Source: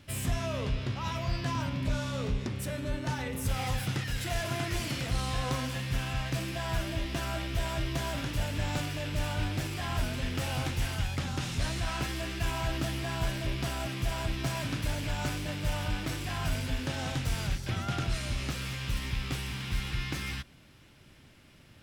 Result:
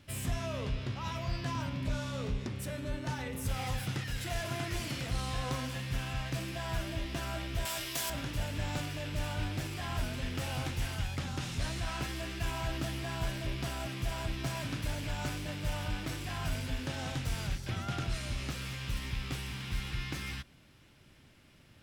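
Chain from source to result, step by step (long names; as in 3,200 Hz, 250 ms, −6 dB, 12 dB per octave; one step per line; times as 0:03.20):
0:07.65–0:08.10: RIAA equalisation recording
level −3.5 dB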